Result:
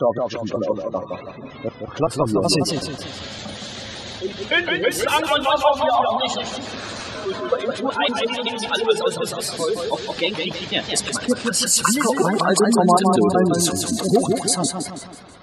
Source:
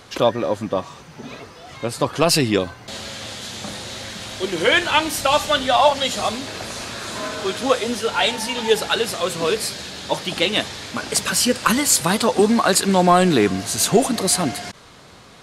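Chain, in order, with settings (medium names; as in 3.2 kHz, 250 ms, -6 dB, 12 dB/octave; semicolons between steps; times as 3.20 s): slices played last to first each 188 ms, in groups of 2; spectral gate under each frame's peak -15 dB strong; modulated delay 162 ms, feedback 46%, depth 117 cents, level -5 dB; trim -1 dB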